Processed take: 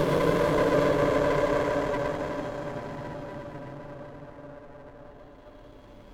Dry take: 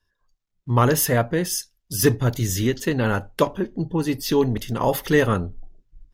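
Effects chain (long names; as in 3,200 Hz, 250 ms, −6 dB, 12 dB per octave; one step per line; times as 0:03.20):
extreme stretch with random phases 45×, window 0.10 s, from 0:03.41
windowed peak hold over 17 samples
level −7 dB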